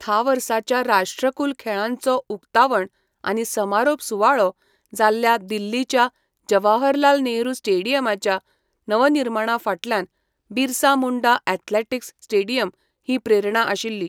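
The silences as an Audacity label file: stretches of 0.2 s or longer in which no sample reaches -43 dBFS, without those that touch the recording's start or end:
2.870000	3.240000	silence
4.510000	4.860000	silence
6.090000	6.480000	silence
8.390000	8.880000	silence
10.050000	10.510000	silence
12.700000	13.080000	silence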